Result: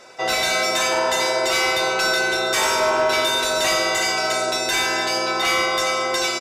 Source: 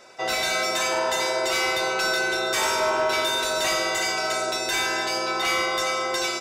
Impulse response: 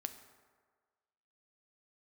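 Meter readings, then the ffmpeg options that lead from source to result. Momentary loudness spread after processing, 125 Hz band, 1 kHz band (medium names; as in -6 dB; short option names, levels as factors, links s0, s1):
2 LU, +4.5 dB, +4.0 dB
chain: -filter_complex "[0:a]asplit=2[s0][s1];[1:a]atrim=start_sample=2205,asetrate=83790,aresample=44100[s2];[s1][s2]afir=irnorm=-1:irlink=0,volume=1.5[s3];[s0][s3]amix=inputs=2:normalize=0,aresample=32000,aresample=44100"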